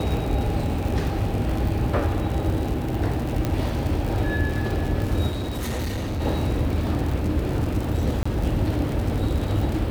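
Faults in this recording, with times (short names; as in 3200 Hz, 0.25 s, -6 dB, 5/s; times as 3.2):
crackle 89/s -27 dBFS
3.45 pop -11 dBFS
5.3–6.21 clipped -24 dBFS
8.23–8.26 gap 25 ms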